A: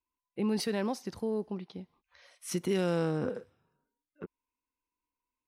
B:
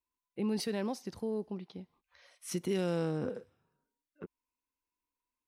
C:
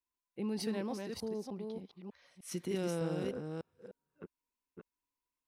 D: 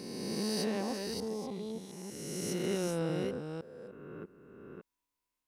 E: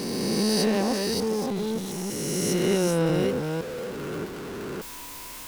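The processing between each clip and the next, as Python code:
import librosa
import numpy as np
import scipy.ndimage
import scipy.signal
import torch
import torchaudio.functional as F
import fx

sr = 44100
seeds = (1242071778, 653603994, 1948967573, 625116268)

y1 = fx.dynamic_eq(x, sr, hz=1300.0, q=0.96, threshold_db=-49.0, ratio=4.0, max_db=-3)
y1 = y1 * librosa.db_to_amplitude(-2.5)
y2 = fx.reverse_delay(y1, sr, ms=301, wet_db=-3.5)
y2 = y2 * librosa.db_to_amplitude(-4.0)
y3 = fx.spec_swells(y2, sr, rise_s=2.19)
y4 = y3 + 0.5 * 10.0 ** (-41.0 / 20.0) * np.sign(y3)
y4 = y4 * librosa.db_to_amplitude(9.0)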